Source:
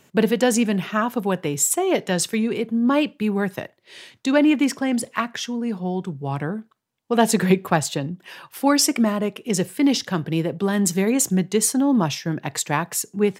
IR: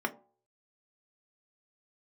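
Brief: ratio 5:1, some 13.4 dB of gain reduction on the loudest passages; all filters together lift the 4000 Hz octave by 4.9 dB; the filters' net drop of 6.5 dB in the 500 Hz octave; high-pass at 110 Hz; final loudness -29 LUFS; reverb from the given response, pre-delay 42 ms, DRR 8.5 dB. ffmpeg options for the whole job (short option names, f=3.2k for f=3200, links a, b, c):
-filter_complex "[0:a]highpass=110,equalizer=f=500:t=o:g=-8.5,equalizer=f=4k:t=o:g=7,acompressor=threshold=-28dB:ratio=5,asplit=2[a][b];[1:a]atrim=start_sample=2205,adelay=42[c];[b][c]afir=irnorm=-1:irlink=0,volume=-15.5dB[d];[a][d]amix=inputs=2:normalize=0,volume=2dB"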